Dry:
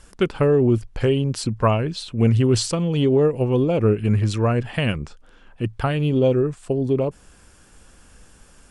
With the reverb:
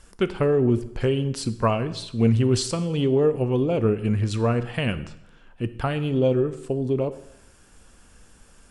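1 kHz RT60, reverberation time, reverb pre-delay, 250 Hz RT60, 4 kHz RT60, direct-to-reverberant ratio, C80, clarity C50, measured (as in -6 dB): 0.85 s, 0.85 s, 3 ms, 0.80 s, 0.80 s, 11.5 dB, 17.0 dB, 14.5 dB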